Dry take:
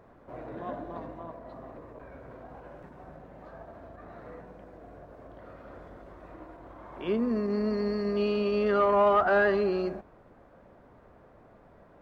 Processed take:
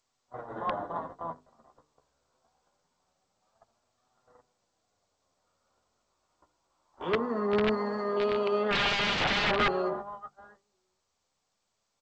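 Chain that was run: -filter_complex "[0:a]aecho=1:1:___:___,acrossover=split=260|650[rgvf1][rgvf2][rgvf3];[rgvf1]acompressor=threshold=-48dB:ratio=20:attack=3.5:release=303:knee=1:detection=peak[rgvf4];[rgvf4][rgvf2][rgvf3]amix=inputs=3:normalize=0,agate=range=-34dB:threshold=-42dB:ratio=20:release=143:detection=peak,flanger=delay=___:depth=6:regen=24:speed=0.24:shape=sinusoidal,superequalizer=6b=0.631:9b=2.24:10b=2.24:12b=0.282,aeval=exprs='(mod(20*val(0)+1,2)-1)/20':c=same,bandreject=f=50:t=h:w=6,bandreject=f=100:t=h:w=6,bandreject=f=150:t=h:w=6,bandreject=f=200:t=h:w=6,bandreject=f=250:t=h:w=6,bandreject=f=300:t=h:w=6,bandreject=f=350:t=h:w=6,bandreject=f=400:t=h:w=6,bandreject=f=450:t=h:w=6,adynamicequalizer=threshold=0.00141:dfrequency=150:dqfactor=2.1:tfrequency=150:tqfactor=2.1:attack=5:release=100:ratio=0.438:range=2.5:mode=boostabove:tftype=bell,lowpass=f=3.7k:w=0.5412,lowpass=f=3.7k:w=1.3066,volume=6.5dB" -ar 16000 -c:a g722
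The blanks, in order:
1056, 0.0841, 7.9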